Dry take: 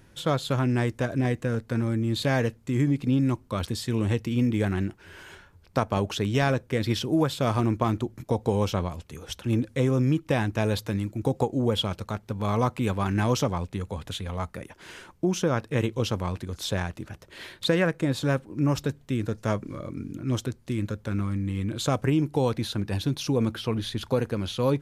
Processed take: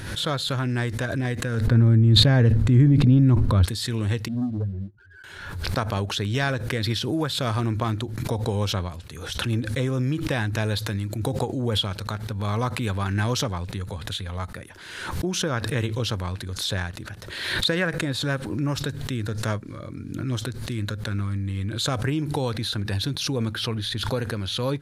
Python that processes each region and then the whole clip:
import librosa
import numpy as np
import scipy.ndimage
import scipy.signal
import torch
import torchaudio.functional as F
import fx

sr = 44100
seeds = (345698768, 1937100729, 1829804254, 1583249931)

y = fx.chain(x, sr, fx.tilt_eq(slope=-3.5),
    fx.sustainer(db_per_s=27.0), at=(1.67, 3.66))
y = fx.chain(y, sr, fx.spec_expand(power=3.3),
    fx.leveller(passes=1),
    fx.upward_expand(threshold_db=-36.0, expansion=2.5), at=(4.28, 5.24))
y = fx.graphic_eq_15(y, sr, hz=(100, 1600, 4000, 10000), db=(6, 7, 9, 6))
y = fx.pre_swell(y, sr, db_per_s=45.0)
y = F.gain(torch.from_numpy(y), -3.5).numpy()